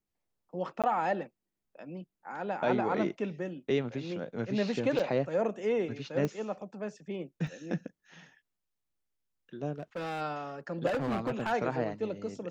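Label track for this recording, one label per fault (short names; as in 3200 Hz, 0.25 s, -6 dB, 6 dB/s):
0.820000	0.840000	gap 17 ms
4.990000	5.000000	gap 5 ms
6.250000	6.250000	pop -20 dBFS
7.470000	7.470000	gap 2.2 ms
9.780000	10.220000	clipped -32.5 dBFS
10.860000	11.530000	clipped -27.5 dBFS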